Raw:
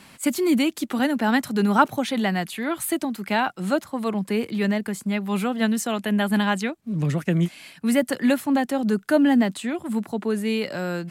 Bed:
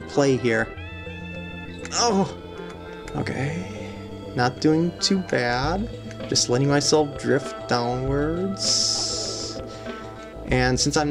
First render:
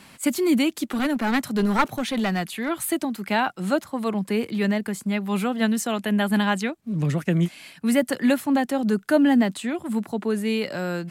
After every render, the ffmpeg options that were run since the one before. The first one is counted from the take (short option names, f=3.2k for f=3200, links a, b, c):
-filter_complex "[0:a]asplit=3[a][b][c];[a]afade=t=out:st=0.88:d=0.02[d];[b]aeval=exprs='clip(val(0),-1,0.0841)':c=same,afade=t=in:st=0.88:d=0.02,afade=t=out:st=2.68:d=0.02[e];[c]afade=t=in:st=2.68:d=0.02[f];[d][e][f]amix=inputs=3:normalize=0"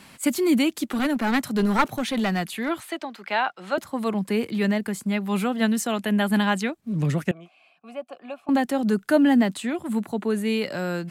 -filter_complex "[0:a]asettb=1/sr,asplit=3[a][b][c];[a]atrim=end=2.804[d];[b]atrim=start=2.8:end=3.78,asetpts=PTS-STARTPTS,afade=t=in:d=0.004:c=qsin,afade=t=out:st=0.976:d=0.004:c=qsin,acrossover=split=430 5200:gain=0.141 1 0.126[e][f][g];[e][f][g]amix=inputs=3:normalize=0[h];[c]atrim=start=3.776[i];[d][h]acrossfade=d=0.004:c1=hsin:c2=qsin[j];[j][i]acrossfade=d=0.004:c1=qsin:c2=hsin,asettb=1/sr,asplit=3[k][l][m];[k]atrim=end=7.314[n];[l]atrim=start=7.31:end=8.49,asetpts=PTS-STARTPTS,afade=t=in:d=0.004:c=qsin,afade=t=out:st=1.176:d=0.004:c=qsin,asplit=3[o][p][q];[o]bandpass=f=730:t=q:w=8,volume=0dB[r];[p]bandpass=f=1.09k:t=q:w=8,volume=-6dB[s];[q]bandpass=f=2.44k:t=q:w=8,volume=-9dB[t];[r][s][t]amix=inputs=3:normalize=0[u];[m]atrim=start=8.486[v];[n][u]acrossfade=d=0.004:c1=hsin:c2=qsin[w];[w][v]acrossfade=d=0.004:c1=qsin:c2=hsin,asettb=1/sr,asplit=3[x][y][z];[x]atrim=end=9.894[aa];[y]atrim=start=9.89:end=10.52,asetpts=PTS-STARTPTS,afade=t=in:d=0.004:c=qsin,afade=t=out:st=0.626:d=0.004:c=qsin,bandreject=f=5.2k:w=5.8[ab];[z]atrim=start=10.516[ac];[aa][ab]acrossfade=d=0.004:c1=hsin:c2=qsin[ad];[ad][ac]acrossfade=d=0.004:c1=qsin:c2=hsin"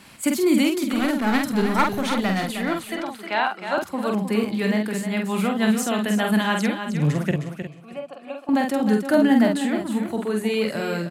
-filter_complex "[0:a]asplit=2[a][b];[b]adelay=47,volume=-4dB[c];[a][c]amix=inputs=2:normalize=0,aecho=1:1:311|622|933:0.376|0.0677|0.0122"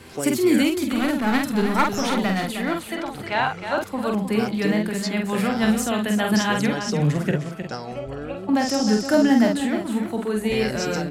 -filter_complex "[1:a]volume=-10dB[a];[0:a][a]amix=inputs=2:normalize=0"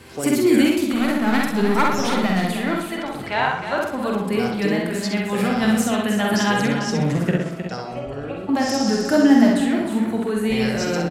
-filter_complex "[0:a]asplit=2[a][b];[b]adelay=64,lowpass=f=4.6k:p=1,volume=-3dB,asplit=2[c][d];[d]adelay=64,lowpass=f=4.6k:p=1,volume=0.46,asplit=2[e][f];[f]adelay=64,lowpass=f=4.6k:p=1,volume=0.46,asplit=2[g][h];[h]adelay=64,lowpass=f=4.6k:p=1,volume=0.46,asplit=2[i][j];[j]adelay=64,lowpass=f=4.6k:p=1,volume=0.46,asplit=2[k][l];[l]adelay=64,lowpass=f=4.6k:p=1,volume=0.46[m];[a][c][e][g][i][k][m]amix=inputs=7:normalize=0"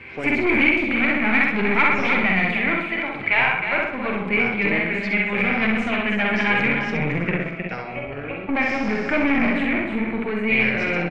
-af "aeval=exprs='(tanh(7.94*val(0)+0.55)-tanh(0.55))/7.94':c=same,lowpass=f=2.3k:t=q:w=11"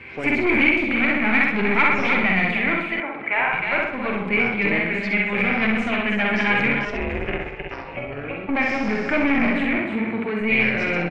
-filter_complex "[0:a]asettb=1/sr,asplit=3[a][b][c];[a]atrim=end=3.004[d];[b]atrim=start=3:end=3.53,asetpts=PTS-STARTPTS,afade=t=in:d=0.004:c=qsin,afade=t=out:st=0.526:d=0.004:c=qsin,acrossover=split=200 2400:gain=0.126 1 0.112[e][f][g];[e][f][g]amix=inputs=3:normalize=0[h];[c]atrim=start=3.526[i];[d][h]acrossfade=d=0.004:c1=hsin:c2=qsin[j];[j][i]acrossfade=d=0.004:c1=qsin:c2=hsin,asettb=1/sr,asplit=3[k][l][m];[k]atrim=end=6.854[n];[l]atrim=start=6.85:end=7.97,asetpts=PTS-STARTPTS,afade=t=in:d=0.004:c=qsin,afade=t=out:st=1.116:d=0.004:c=qsin,aeval=exprs='val(0)*sin(2*PI*210*n/s)':c=same[o];[m]atrim=start=7.966[p];[n][o]acrossfade=d=0.004:c1=hsin:c2=qsin[q];[q][p]acrossfade=d=0.004:c1=qsin:c2=hsin,asettb=1/sr,asplit=3[r][s][t];[r]atrim=end=9.784[u];[s]atrim=start=9.78:end=10.41,asetpts=PTS-STARTPTS,afade=t=in:d=0.004:c=qsin,afade=t=out:st=0.626:d=0.004:c=qsin,highpass=71[v];[t]atrim=start=10.406[w];[u][v]acrossfade=d=0.004:c1=hsin:c2=qsin[x];[x][w]acrossfade=d=0.004:c1=qsin:c2=hsin"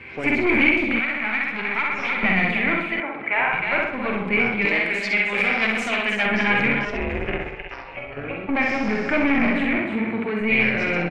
-filter_complex "[0:a]asettb=1/sr,asplit=3[a][b][c];[a]atrim=end=0.994[d];[b]atrim=start=0.99:end=2.23,asetpts=PTS-STARTPTS,afade=t=in:d=0.004:c=qsin,afade=t=out:st=1.236:d=0.004:c=qsin,acrossover=split=740|3900[e][f][g];[e]acompressor=threshold=-34dB:ratio=4[h];[f]acompressor=threshold=-22dB:ratio=4[i];[g]acompressor=threshold=-42dB:ratio=4[j];[h][i][j]amix=inputs=3:normalize=0[k];[c]atrim=start=2.226[l];[d][k]acrossfade=d=0.004:c1=hsin:c2=qsin[m];[m][l]acrossfade=d=0.004:c1=qsin:c2=hsin,asettb=1/sr,asplit=3[n][o][p];[n]atrim=end=4.654[q];[o]atrim=start=4.65:end=6.26,asetpts=PTS-STARTPTS,afade=t=in:d=0.004:c=qsin,afade=t=out:st=1.606:d=0.004:c=qsin,bass=f=250:g=-11,treble=f=4k:g=14[r];[p]atrim=start=6.256[s];[q][r]acrossfade=d=0.004:c1=hsin:c2=qsin[t];[t][s]acrossfade=d=0.004:c1=qsin:c2=hsin,asettb=1/sr,asplit=3[u][v][w];[u]atrim=end=7.594[x];[v]atrim=start=7.59:end=8.17,asetpts=PTS-STARTPTS,afade=t=in:d=0.004:c=qsin,afade=t=out:st=0.576:d=0.004:c=qsin,equalizer=f=190:w=0.38:g=-9.5[y];[w]atrim=start=8.166[z];[x][y]acrossfade=d=0.004:c1=hsin:c2=qsin[aa];[aa][z]acrossfade=d=0.004:c1=qsin:c2=hsin"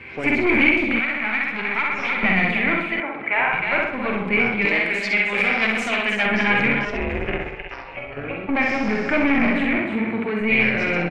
-af "volume=1dB"